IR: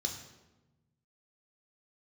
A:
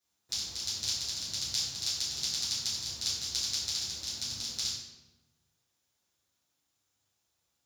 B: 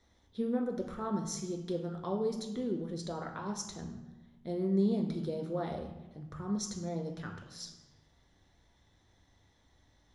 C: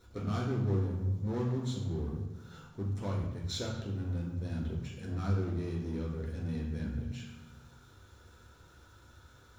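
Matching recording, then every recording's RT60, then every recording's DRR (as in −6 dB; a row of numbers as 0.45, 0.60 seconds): B; 1.1, 1.1, 1.1 seconds; −12.5, 2.5, −3.5 decibels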